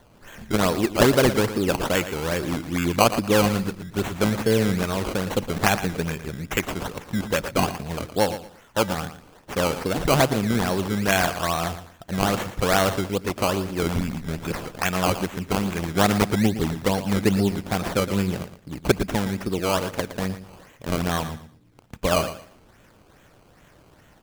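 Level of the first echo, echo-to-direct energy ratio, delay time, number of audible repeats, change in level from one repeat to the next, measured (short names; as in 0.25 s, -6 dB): -12.0 dB, -12.0 dB, 0.115 s, 2, -13.0 dB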